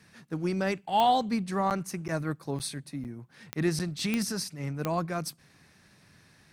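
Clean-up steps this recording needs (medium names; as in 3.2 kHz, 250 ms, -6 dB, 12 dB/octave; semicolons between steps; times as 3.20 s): de-click; interpolate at 1.70/2.08/2.59/3.04/3.79 s, 8.6 ms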